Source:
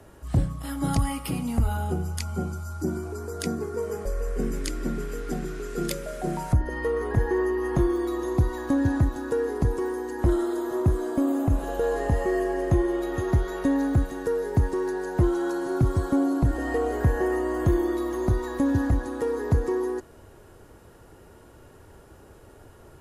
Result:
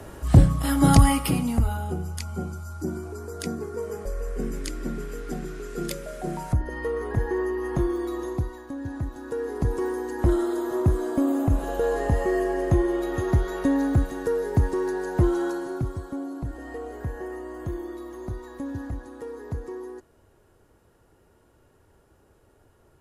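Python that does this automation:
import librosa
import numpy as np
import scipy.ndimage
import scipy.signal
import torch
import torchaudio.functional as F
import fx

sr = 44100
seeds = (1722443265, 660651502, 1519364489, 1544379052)

y = fx.gain(x, sr, db=fx.line((1.09, 9.0), (1.81, -2.0), (8.24, -2.0), (8.72, -12.0), (9.83, 1.0), (15.42, 1.0), (16.04, -10.0)))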